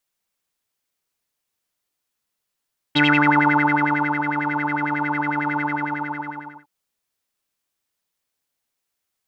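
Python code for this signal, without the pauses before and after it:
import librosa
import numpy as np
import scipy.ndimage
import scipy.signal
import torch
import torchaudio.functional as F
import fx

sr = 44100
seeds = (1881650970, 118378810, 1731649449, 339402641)

y = fx.sub_patch_wobble(sr, seeds[0], note=62, wave='square', wave2='saw', interval_st=12, level2_db=-10, sub_db=-7.5, noise_db=-30.0, kind='lowpass', cutoff_hz=1300.0, q=11.0, env_oct=1.0, env_decay_s=0.33, env_sustain_pct=10, attack_ms=15.0, decay_s=1.23, sustain_db=-9.0, release_s=1.06, note_s=2.65, lfo_hz=11.0, wobble_oct=0.6)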